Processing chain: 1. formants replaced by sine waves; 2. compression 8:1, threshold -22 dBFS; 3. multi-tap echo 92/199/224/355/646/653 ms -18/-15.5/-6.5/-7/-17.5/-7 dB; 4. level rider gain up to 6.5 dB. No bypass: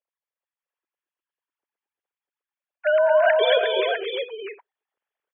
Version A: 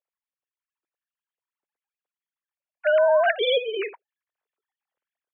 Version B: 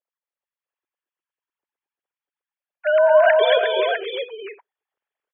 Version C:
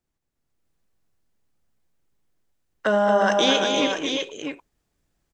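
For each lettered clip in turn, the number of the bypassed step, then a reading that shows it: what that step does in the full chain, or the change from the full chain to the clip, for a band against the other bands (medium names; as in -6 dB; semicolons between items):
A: 3, momentary loudness spread change -4 LU; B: 2, mean gain reduction 1.5 dB; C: 1, crest factor change +2.5 dB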